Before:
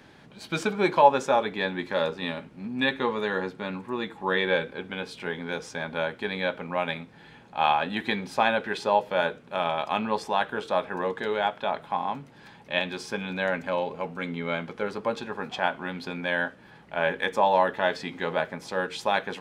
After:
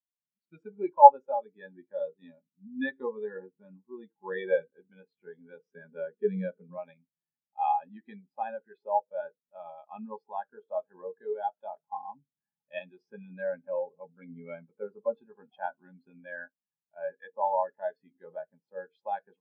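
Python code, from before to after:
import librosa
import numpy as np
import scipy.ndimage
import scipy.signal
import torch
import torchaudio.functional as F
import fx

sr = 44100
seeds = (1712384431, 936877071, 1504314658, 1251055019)

y = fx.cabinet(x, sr, low_hz=100.0, low_slope=12, high_hz=7700.0, hz=(130.0, 190.0, 420.0, 720.0, 1900.0), db=(-6, 9, 7, -7, 3), at=(5.65, 6.78))
y = fx.rider(y, sr, range_db=4, speed_s=2.0)
y = fx.spectral_expand(y, sr, expansion=2.5)
y = y * librosa.db_to_amplitude(5.0)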